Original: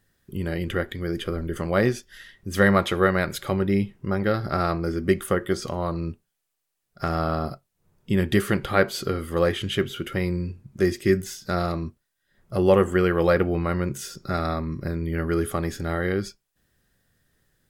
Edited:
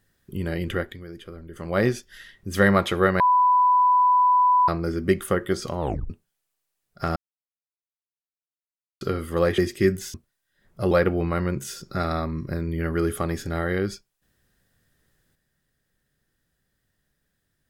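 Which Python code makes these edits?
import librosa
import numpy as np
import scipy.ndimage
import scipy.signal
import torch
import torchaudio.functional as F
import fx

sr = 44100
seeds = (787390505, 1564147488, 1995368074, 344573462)

y = fx.edit(x, sr, fx.fade_down_up(start_s=0.74, length_s=1.1, db=-12.0, fade_s=0.31),
    fx.bleep(start_s=3.2, length_s=1.48, hz=995.0, db=-14.5),
    fx.tape_stop(start_s=5.8, length_s=0.3),
    fx.silence(start_s=7.16, length_s=1.85),
    fx.cut(start_s=9.58, length_s=1.25),
    fx.cut(start_s=11.39, length_s=0.48),
    fx.cut(start_s=12.64, length_s=0.61), tone=tone)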